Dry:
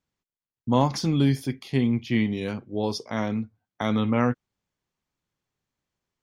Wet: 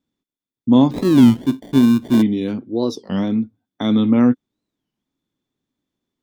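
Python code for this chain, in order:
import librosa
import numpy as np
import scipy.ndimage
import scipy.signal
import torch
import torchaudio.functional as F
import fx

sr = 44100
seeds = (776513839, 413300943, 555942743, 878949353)

y = fx.sample_hold(x, sr, seeds[0], rate_hz=1300.0, jitter_pct=0, at=(0.9, 2.21), fade=0.02)
y = fx.small_body(y, sr, hz=(270.0, 3500.0), ring_ms=25, db=16)
y = fx.record_warp(y, sr, rpm=33.33, depth_cents=250.0)
y = F.gain(torch.from_numpy(y), -2.0).numpy()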